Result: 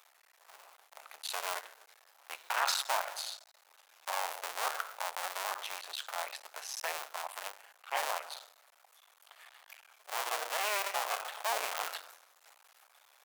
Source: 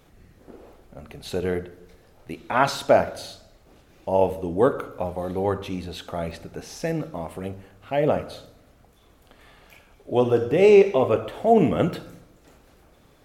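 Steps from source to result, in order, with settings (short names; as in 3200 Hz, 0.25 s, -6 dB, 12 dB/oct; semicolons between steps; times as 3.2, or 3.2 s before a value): cycle switcher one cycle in 2, muted; HPF 800 Hz 24 dB/oct; high shelf 6500 Hz +5.5 dB; limiter -16.5 dBFS, peak gain reduction 13 dB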